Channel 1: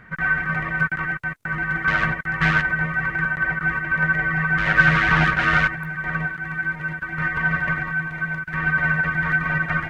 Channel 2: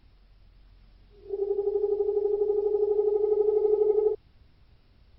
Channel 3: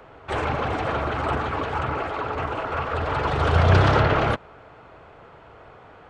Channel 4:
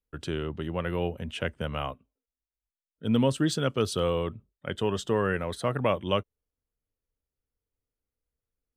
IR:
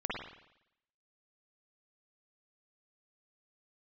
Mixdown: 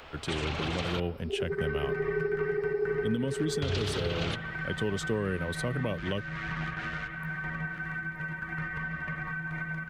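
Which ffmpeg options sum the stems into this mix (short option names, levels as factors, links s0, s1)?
-filter_complex "[0:a]acompressor=threshold=0.0447:ratio=6,adelay=1400,volume=0.501,asplit=3[s0][s1][s2];[s1]volume=0.447[s3];[s2]volume=0.211[s4];[1:a]volume=1[s5];[2:a]equalizer=f=3300:t=o:w=2:g=12,volume=0.501,asplit=3[s6][s7][s8];[s6]atrim=end=1,asetpts=PTS-STARTPTS,afade=t=out:st=0.996:d=0.004:c=hsin[s9];[s7]atrim=start=1:end=3.62,asetpts=PTS-STARTPTS,volume=0[s10];[s8]atrim=start=3.62,asetpts=PTS-STARTPTS,afade=t=in:d=0.004:c=hsin[s11];[s9][s10][s11]concat=n=3:v=0:a=1,asplit=2[s12][s13];[s13]volume=0.119[s14];[3:a]volume=1.12[s15];[s5][s12]amix=inputs=2:normalize=0,highshelf=f=4500:g=10.5,acompressor=threshold=0.0355:ratio=1.5,volume=1[s16];[4:a]atrim=start_sample=2205[s17];[s3][s14]amix=inputs=2:normalize=0[s18];[s18][s17]afir=irnorm=-1:irlink=0[s19];[s4]aecho=0:1:926:1[s20];[s0][s15][s16][s19][s20]amix=inputs=5:normalize=0,acrossover=split=450|3000[s21][s22][s23];[s22]acompressor=threshold=0.0178:ratio=6[s24];[s21][s24][s23]amix=inputs=3:normalize=0,alimiter=limit=0.1:level=0:latency=1:release=352"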